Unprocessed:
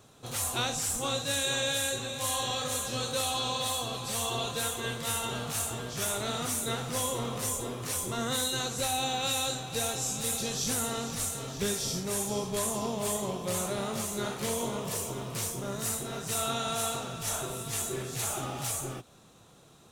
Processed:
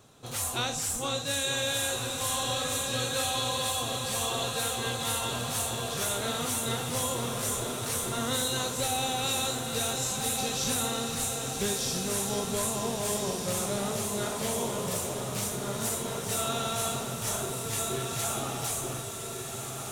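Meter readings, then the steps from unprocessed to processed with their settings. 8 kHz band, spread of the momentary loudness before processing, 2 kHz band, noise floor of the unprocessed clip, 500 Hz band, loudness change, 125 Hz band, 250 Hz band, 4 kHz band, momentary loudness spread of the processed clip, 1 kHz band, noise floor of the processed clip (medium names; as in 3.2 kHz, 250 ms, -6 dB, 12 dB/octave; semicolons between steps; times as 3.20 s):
+1.5 dB, 4 LU, +1.5 dB, -56 dBFS, +1.5 dB, +1.5 dB, +1.5 dB, +1.5 dB, +1.5 dB, 4 LU, +1.5 dB, -37 dBFS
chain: echo that smears into a reverb 1485 ms, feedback 46%, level -4.5 dB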